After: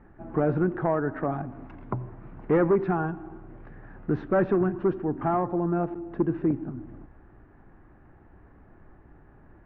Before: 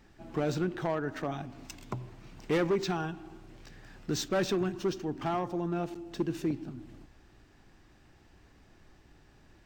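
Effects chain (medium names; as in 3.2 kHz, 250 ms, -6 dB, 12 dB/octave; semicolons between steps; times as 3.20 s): low-pass 1.6 kHz 24 dB/octave; trim +6.5 dB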